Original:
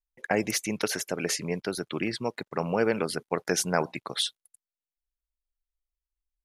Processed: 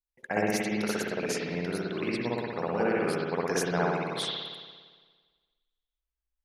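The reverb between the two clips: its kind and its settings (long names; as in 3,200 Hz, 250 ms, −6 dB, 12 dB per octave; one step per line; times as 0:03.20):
spring reverb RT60 1.5 s, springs 57 ms, chirp 45 ms, DRR −6 dB
level −7 dB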